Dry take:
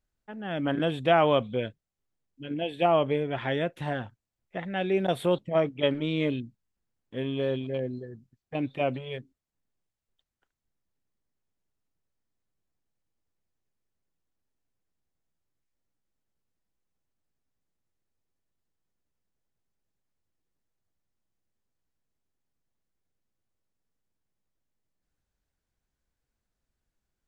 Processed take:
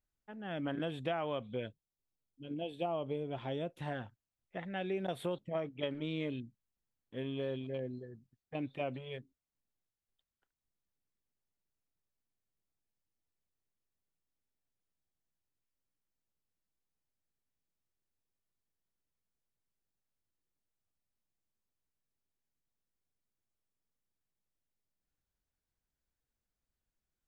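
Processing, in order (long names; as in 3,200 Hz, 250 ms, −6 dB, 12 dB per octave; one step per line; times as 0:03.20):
0:01.67–0:03.79: parametric band 1,800 Hz −14 dB 0.73 octaves
downward compressor 5 to 1, threshold −25 dBFS, peak gain reduction 8.5 dB
level −7.5 dB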